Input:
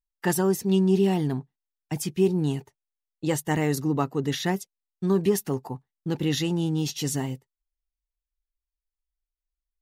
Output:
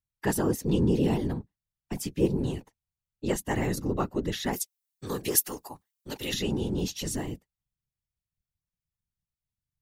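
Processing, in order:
0:04.53–0:06.34: spectral tilt +4 dB per octave
random phases in short frames
level −3.5 dB

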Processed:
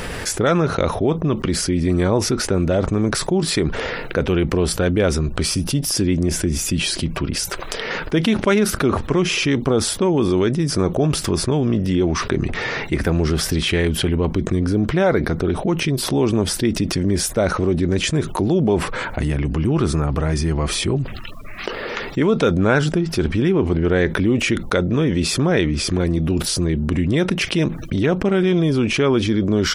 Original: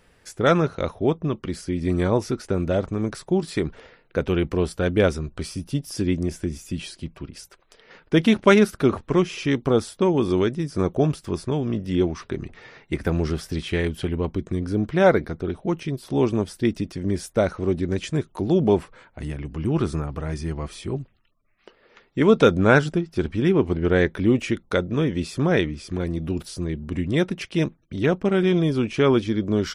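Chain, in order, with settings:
envelope flattener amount 70%
level −3 dB

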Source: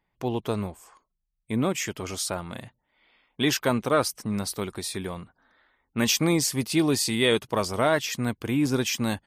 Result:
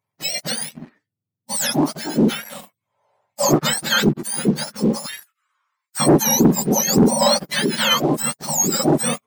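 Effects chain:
frequency axis turned over on the octave scale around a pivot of 1,400 Hz
0:05.06–0:06.00: high-pass filter 1,100 Hz 24 dB per octave
leveller curve on the samples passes 2
level +1.5 dB

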